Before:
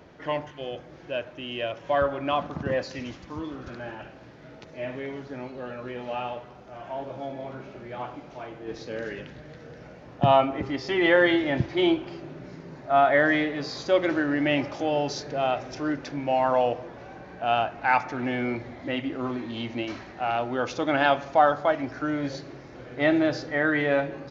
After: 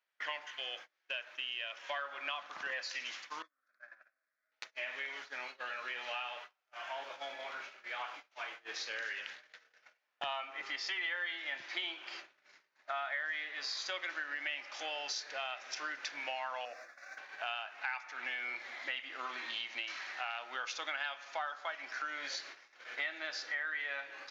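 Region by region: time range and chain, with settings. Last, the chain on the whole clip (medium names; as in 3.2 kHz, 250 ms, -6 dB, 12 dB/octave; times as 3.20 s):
3.42–4.52 s: compression 10:1, threshold -40 dBFS + distance through air 95 m + static phaser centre 590 Hz, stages 8
16.65–17.18 s: treble shelf 3.5 kHz +7.5 dB + static phaser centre 620 Hz, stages 8
whole clip: Chebyshev high-pass 1.8 kHz, order 2; gate -53 dBFS, range -33 dB; compression 6:1, threshold -45 dBFS; trim +8 dB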